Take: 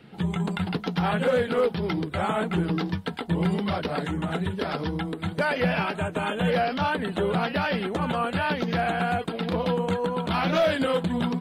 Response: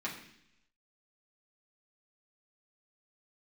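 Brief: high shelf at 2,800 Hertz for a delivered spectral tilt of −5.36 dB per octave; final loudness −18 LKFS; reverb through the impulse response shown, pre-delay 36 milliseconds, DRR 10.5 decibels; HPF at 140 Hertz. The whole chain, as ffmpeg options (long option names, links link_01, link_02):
-filter_complex "[0:a]highpass=140,highshelf=frequency=2800:gain=-7.5,asplit=2[link_01][link_02];[1:a]atrim=start_sample=2205,adelay=36[link_03];[link_02][link_03]afir=irnorm=-1:irlink=0,volume=-14dB[link_04];[link_01][link_04]amix=inputs=2:normalize=0,volume=9dB"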